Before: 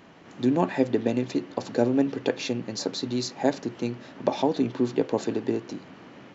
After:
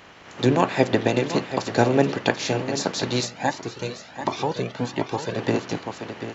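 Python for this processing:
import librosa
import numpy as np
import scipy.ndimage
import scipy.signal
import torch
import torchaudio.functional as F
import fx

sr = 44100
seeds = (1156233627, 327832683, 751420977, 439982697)

y = fx.spec_clip(x, sr, under_db=15)
y = y + 10.0 ** (-10.5 / 20.0) * np.pad(y, (int(737 * sr / 1000.0), 0))[:len(y)]
y = fx.comb_cascade(y, sr, direction='rising', hz=1.4, at=(3.24, 5.37), fade=0.02)
y = y * librosa.db_to_amplitude(4.0)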